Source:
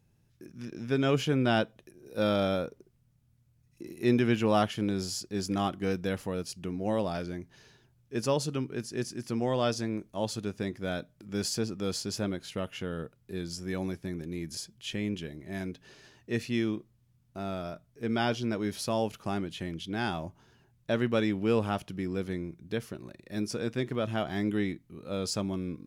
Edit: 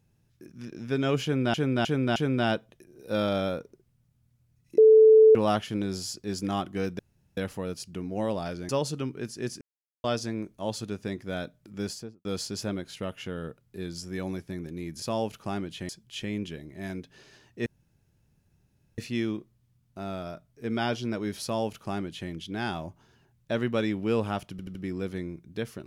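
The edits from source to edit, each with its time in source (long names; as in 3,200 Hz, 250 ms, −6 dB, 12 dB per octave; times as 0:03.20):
0:01.23–0:01.54: repeat, 4 plays
0:03.85–0:04.42: beep over 438 Hz −11.5 dBFS
0:06.06: splice in room tone 0.38 s
0:07.38–0:08.24: remove
0:09.16–0:09.59: silence
0:11.31–0:11.80: fade out and dull
0:16.37: splice in room tone 1.32 s
0:18.85–0:19.69: duplicate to 0:14.60
0:21.90: stutter 0.08 s, 4 plays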